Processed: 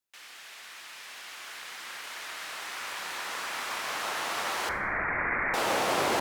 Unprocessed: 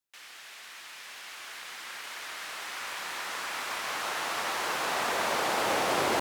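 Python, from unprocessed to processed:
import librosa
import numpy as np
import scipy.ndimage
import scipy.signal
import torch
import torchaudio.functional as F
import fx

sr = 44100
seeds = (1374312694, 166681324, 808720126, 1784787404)

y = fx.freq_invert(x, sr, carrier_hz=2600, at=(4.69, 5.54))
y = fx.rev_schroeder(y, sr, rt60_s=0.65, comb_ms=26, drr_db=13.0)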